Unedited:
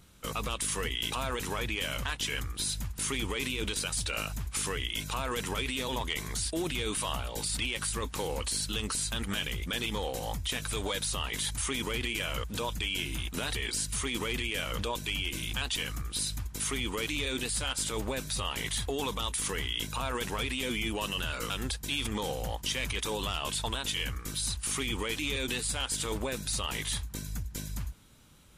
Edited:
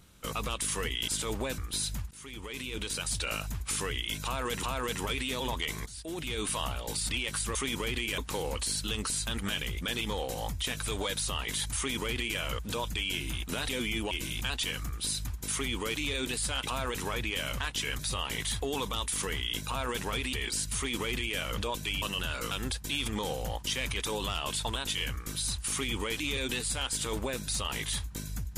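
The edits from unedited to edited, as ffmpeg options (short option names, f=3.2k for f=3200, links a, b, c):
-filter_complex "[0:a]asplit=14[a][b][c][d][e][f][g][h][i][j][k][l][m][n];[a]atrim=end=1.082[o];[b]atrim=start=17.748:end=18.252[p];[c]atrim=start=2.438:end=2.97,asetpts=PTS-STARTPTS,afade=t=out:st=0.528:d=0.004:c=hsin:silence=0.0944061[q];[d]atrim=start=2.97:end=5.492,asetpts=PTS-STARTPTS,afade=t=in:d=1.03:silence=0.0944061[r];[e]atrim=start=5.108:end=6.34,asetpts=PTS-STARTPTS,afade=t=out:st=1.228:d=0.004:c=hsin:silence=0.141254[s];[f]atrim=start=6.34:end=8.032,asetpts=PTS-STARTPTS,afade=t=in:d=0.6:silence=0.141254[t];[g]atrim=start=11.618:end=12.252[u];[h]atrim=start=8.028:end=13.542[v];[i]atrim=start=20.588:end=21.012[w];[j]atrim=start=15.228:end=17.752[x];[k]atrim=start=1.078:end=2.442[y];[l]atrim=start=18.248:end=20.592[z];[m]atrim=start=13.538:end=15.232[aa];[n]atrim=start=21.008[ab];[o][p]acrossfade=d=0.004:c1=hsin:c2=hsin[ac];[q][r]concat=n=2:v=0:a=1[ad];[ac][ad]acrossfade=d=0.004:c1=hsin:c2=hsin[ae];[s][t]concat=n=2:v=0:a=1[af];[ae][af]acrossfade=d=0.004:c1=hsin:c2=hsin[ag];[ag][u]acrossfade=d=0.004:c1=hsin:c2=hsin[ah];[ah][v]acrossfade=d=0.004:c1=hsin:c2=hsin[ai];[ai][w]acrossfade=d=0.004:c1=hsin:c2=hsin[aj];[aj][x]acrossfade=d=0.004:c1=hsin:c2=hsin[ak];[ak][y]acrossfade=d=0.004:c1=hsin:c2=hsin[al];[al][z]acrossfade=d=0.004:c1=hsin:c2=hsin[am];[am][aa]acrossfade=d=0.004:c1=hsin:c2=hsin[an];[an][ab]acrossfade=d=0.004:c1=hsin:c2=hsin"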